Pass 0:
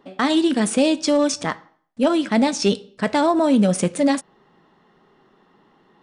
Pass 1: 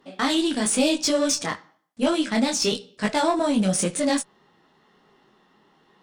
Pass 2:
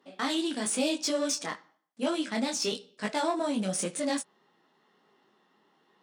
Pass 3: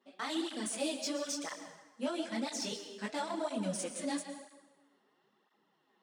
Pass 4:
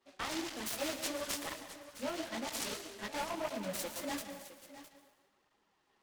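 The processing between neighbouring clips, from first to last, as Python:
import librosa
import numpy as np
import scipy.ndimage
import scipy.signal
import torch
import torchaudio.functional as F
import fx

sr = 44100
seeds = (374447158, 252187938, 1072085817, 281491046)

y1 = fx.high_shelf(x, sr, hz=2500.0, db=9.5)
y1 = fx.tube_stage(y1, sr, drive_db=9.0, bias=0.2)
y1 = fx.detune_double(y1, sr, cents=34)
y2 = scipy.signal.sosfilt(scipy.signal.butter(2, 200.0, 'highpass', fs=sr, output='sos'), y1)
y2 = y2 * librosa.db_to_amplitude(-7.0)
y3 = fx.rev_plate(y2, sr, seeds[0], rt60_s=1.2, hf_ratio=0.8, predelay_ms=105, drr_db=8.0)
y3 = fx.flanger_cancel(y3, sr, hz=1.0, depth_ms=7.0)
y3 = y3 * librosa.db_to_amplitude(-4.5)
y4 = fx.low_shelf(y3, sr, hz=390.0, db=-10.0)
y4 = y4 + 10.0 ** (-14.0 / 20.0) * np.pad(y4, (int(661 * sr / 1000.0), 0))[:len(y4)]
y4 = fx.noise_mod_delay(y4, sr, seeds[1], noise_hz=1300.0, depth_ms=0.068)
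y4 = y4 * librosa.db_to_amplitude(1.0)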